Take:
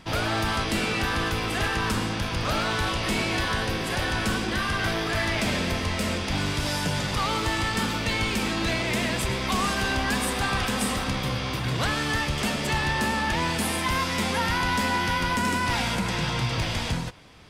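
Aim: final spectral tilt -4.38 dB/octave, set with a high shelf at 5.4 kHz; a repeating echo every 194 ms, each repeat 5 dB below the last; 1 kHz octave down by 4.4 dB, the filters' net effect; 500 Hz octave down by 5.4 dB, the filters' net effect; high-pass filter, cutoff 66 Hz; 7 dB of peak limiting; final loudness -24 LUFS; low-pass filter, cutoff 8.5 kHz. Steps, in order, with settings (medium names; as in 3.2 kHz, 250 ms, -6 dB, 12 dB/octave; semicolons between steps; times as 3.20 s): high-pass 66 Hz; low-pass 8.5 kHz; peaking EQ 500 Hz -6 dB; peaking EQ 1 kHz -3.5 dB; treble shelf 5.4 kHz -6 dB; peak limiter -23 dBFS; feedback delay 194 ms, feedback 56%, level -5 dB; trim +5 dB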